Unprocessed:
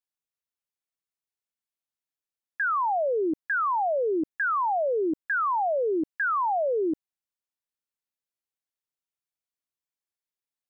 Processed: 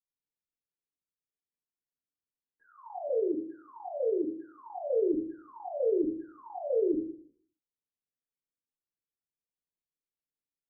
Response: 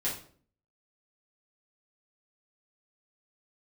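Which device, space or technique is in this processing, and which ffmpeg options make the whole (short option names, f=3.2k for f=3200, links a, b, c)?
next room: -filter_complex "[0:a]asettb=1/sr,asplit=3[a][b][c];[a]atrim=end=3.084[d];[b]atrim=start=3.08:end=4.38,asetpts=PTS-STARTPTS,afade=t=in:d=0.004:c=qsin,afade=t=out:st=1.296:d=0.004:c=qsin,highpass=f=300:p=1[e];[c]atrim=start=4.376[f];[d][e]acrossfade=d=0.004:c1=hsin:c2=qsin[g];[g][f]acrossfade=d=0.004:c1=qsin:c2=hsin,lowpass=f=520:w=0.5412,lowpass=f=520:w=1.3066[h];[1:a]atrim=start_sample=2205[i];[h][i]afir=irnorm=-1:irlink=0,volume=-7dB"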